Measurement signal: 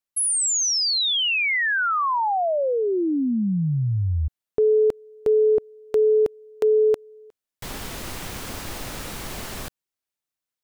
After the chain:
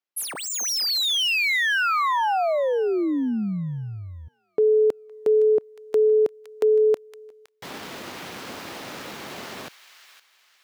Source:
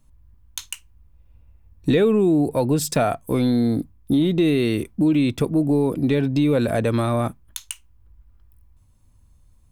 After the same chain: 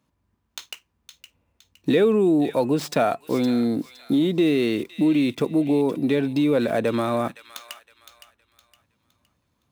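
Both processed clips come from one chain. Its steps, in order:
running median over 5 samples
high-pass filter 210 Hz 12 dB per octave
on a send: delay with a high-pass on its return 514 ms, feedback 33%, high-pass 1,700 Hz, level −10 dB

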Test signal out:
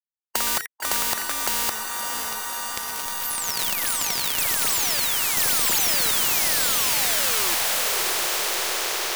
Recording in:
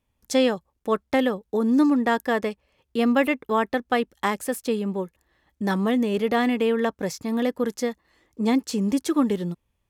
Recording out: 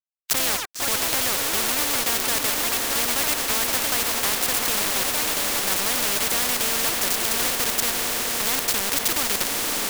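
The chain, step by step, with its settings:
stylus tracing distortion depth 0.028 ms
high-pass filter 410 Hz 12 dB per octave
in parallel at +3 dB: brickwall limiter −18.5 dBFS
on the sum: bit reduction 4 bits
delay with pitch and tempo change per echo 124 ms, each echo +4 semitones, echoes 3, each echo −6 dB
on a send: feedback delay with all-pass diffusion 605 ms, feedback 69%, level −9 dB
on the sum: every bin compressed towards the loudest bin 4 to 1

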